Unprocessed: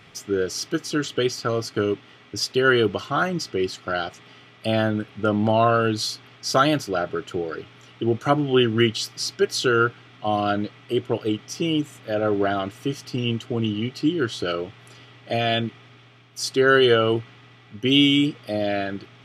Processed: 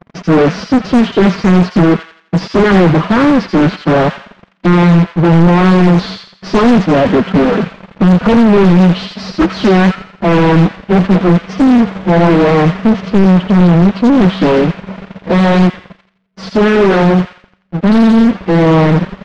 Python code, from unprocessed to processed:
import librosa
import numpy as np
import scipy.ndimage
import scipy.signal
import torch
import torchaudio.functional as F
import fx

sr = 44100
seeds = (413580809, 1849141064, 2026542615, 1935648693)

p1 = fx.halfwave_hold(x, sr)
p2 = fx.peak_eq(p1, sr, hz=110.0, db=6.5, octaves=1.2)
p3 = fx.leveller(p2, sr, passes=2)
p4 = fx.rider(p3, sr, range_db=10, speed_s=2.0)
p5 = fx.pitch_keep_formants(p4, sr, semitones=8.0)
p6 = fx.leveller(p5, sr, passes=5)
p7 = fx.spacing_loss(p6, sr, db_at_10k=44)
p8 = p7 + fx.echo_wet_highpass(p7, sr, ms=85, feedback_pct=38, hz=1700.0, wet_db=-3.0, dry=0)
p9 = fx.doppler_dist(p8, sr, depth_ms=0.53)
y = p9 * 10.0 ** (-6.5 / 20.0)